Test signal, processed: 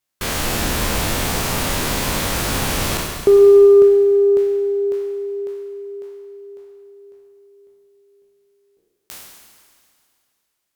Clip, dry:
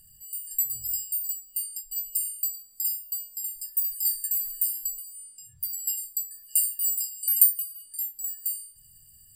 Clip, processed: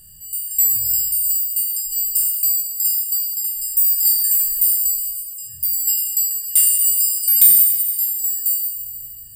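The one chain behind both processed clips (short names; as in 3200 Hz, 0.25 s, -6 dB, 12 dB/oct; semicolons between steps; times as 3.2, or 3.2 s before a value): spectral trails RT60 1.12 s; in parallel at -5.5 dB: sine folder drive 9 dB, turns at -1.5 dBFS; on the sum: added harmonics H 2 -28 dB, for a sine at -0.5 dBFS; Schroeder reverb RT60 2.4 s, combs from 32 ms, DRR 6.5 dB; gain -2.5 dB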